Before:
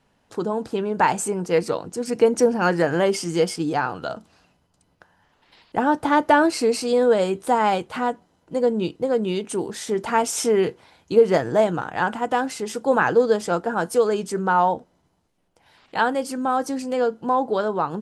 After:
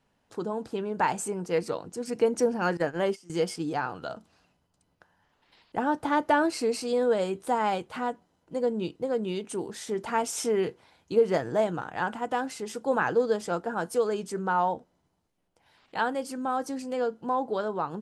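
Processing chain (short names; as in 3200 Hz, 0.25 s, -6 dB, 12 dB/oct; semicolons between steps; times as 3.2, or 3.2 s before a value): 2.77–3.3 gate -20 dBFS, range -19 dB; gain -7 dB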